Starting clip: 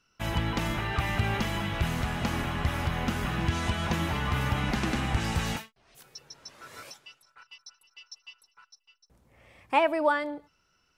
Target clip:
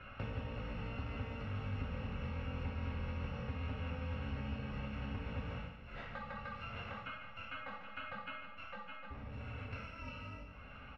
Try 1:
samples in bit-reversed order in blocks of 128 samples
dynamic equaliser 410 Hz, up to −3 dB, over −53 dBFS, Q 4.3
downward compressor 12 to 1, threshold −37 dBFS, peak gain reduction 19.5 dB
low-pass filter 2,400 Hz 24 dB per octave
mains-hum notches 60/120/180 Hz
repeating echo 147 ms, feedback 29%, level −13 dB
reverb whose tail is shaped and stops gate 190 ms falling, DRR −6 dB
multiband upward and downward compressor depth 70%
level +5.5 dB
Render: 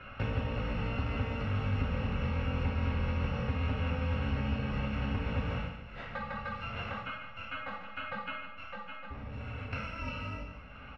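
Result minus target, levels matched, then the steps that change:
downward compressor: peak gain reduction −8.5 dB
change: downward compressor 12 to 1, threshold −46.5 dBFS, peak gain reduction 28 dB

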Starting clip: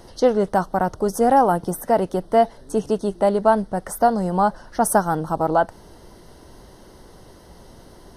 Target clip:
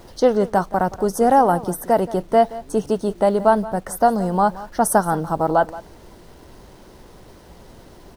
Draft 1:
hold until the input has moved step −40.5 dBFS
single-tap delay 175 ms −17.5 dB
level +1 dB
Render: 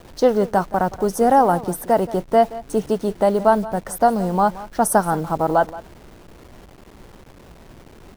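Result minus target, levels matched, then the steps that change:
hold until the input has moved: distortion +11 dB
change: hold until the input has moved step −50.5 dBFS

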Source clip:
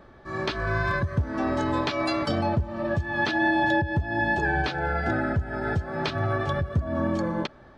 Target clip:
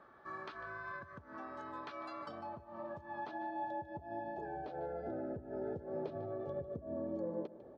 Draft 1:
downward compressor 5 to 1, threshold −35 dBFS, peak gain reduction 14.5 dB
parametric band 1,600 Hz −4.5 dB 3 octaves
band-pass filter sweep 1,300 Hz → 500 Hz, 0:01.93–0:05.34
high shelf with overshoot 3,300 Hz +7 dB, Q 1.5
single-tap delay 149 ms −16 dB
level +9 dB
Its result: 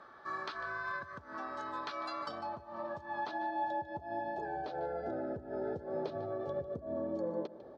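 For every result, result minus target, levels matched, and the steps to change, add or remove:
4,000 Hz band +6.5 dB; 2,000 Hz band +2.5 dB
remove: high shelf with overshoot 3,300 Hz +7 dB, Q 1.5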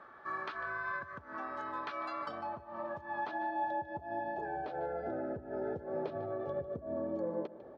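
2,000 Hz band +3.5 dB
change: parametric band 1,600 Hz −12.5 dB 3 octaves

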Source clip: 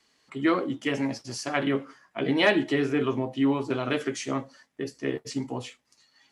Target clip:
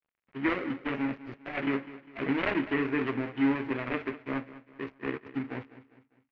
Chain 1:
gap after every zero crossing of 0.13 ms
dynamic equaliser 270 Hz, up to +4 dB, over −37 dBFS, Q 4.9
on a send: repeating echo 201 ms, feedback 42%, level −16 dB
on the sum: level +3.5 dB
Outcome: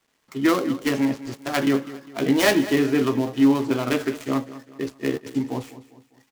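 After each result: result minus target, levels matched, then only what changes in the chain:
gap after every zero crossing: distortion −7 dB; 2,000 Hz band −4.0 dB
change: gap after every zero crossing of 0.39 ms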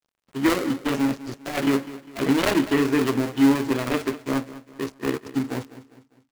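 2,000 Hz band −4.5 dB
add after dynamic equaliser: transistor ladder low-pass 2,700 Hz, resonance 45%

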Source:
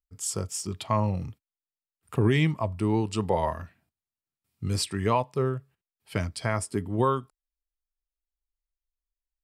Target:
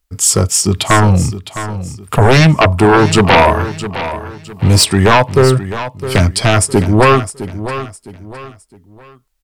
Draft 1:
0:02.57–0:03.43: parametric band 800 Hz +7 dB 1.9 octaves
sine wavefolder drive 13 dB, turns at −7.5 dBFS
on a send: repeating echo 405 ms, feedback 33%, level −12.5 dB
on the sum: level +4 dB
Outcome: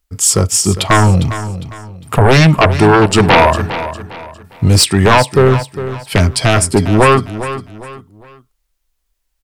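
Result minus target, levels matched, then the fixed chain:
echo 255 ms early
0:02.57–0:03.43: parametric band 800 Hz +7 dB 1.9 octaves
sine wavefolder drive 13 dB, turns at −7.5 dBFS
on a send: repeating echo 660 ms, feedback 33%, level −12.5 dB
on the sum: level +4 dB

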